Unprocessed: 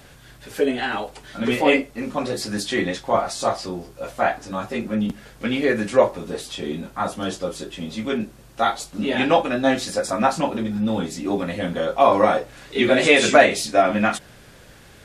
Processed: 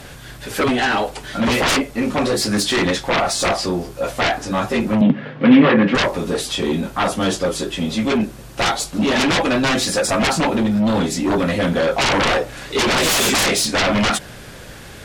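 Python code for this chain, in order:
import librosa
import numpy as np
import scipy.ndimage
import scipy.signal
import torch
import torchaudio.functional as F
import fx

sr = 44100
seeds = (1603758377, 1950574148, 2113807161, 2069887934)

y = fx.fold_sine(x, sr, drive_db=18, ceiling_db=-1.5)
y = fx.cabinet(y, sr, low_hz=120.0, low_slope=24, high_hz=3200.0, hz=(150.0, 260.0, 530.0, 1100.0, 1800.0), db=(10, 10, 7, 3, 3), at=(5.01, 5.95))
y = y * librosa.db_to_amplitude(-12.0)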